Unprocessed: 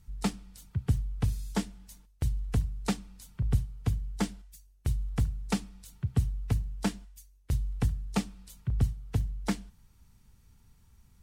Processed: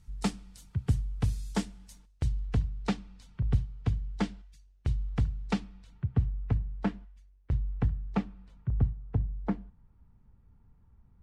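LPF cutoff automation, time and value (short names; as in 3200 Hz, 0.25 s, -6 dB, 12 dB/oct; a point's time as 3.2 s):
1.85 s 10000 Hz
2.6 s 4100 Hz
5.51 s 4100 Hz
6.15 s 1900 Hz
8.19 s 1900 Hz
9.14 s 1100 Hz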